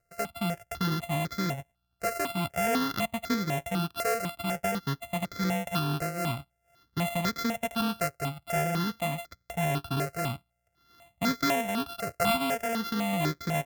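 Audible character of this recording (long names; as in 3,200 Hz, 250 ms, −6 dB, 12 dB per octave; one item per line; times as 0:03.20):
a buzz of ramps at a fixed pitch in blocks of 64 samples
notches that jump at a steady rate 4 Hz 930–2,800 Hz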